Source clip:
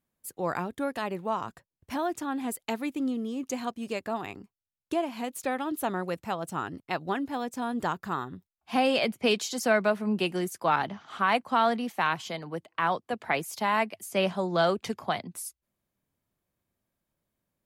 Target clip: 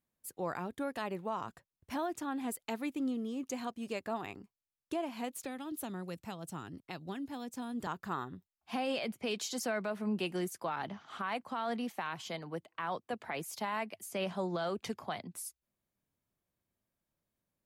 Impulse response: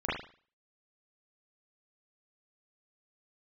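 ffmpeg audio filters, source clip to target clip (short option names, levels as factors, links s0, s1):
-filter_complex "[0:a]asettb=1/sr,asplit=3[s0][s1][s2];[s0]atrim=end=5.434[s3];[s1]atrim=start=5.43:end=7.87,asetpts=PTS-STARTPTS,afade=t=in:d=0.004:c=qsin,afade=t=out:st=2.436:d=0.004:c=qsin,acrossover=split=290|3000[s4][s5][s6];[s5]acompressor=threshold=0.0112:ratio=6[s7];[s4][s7][s6]amix=inputs=3:normalize=0[s8];[s2]atrim=start=7.866[s9];[s3][s8]acrossfade=d=0.004:c1=hsin:c2=qsin[s10];[s10][s9]acrossfade=d=0.004:c1=qsin:c2=hsin,alimiter=limit=0.0841:level=0:latency=1:release=71,volume=0.562"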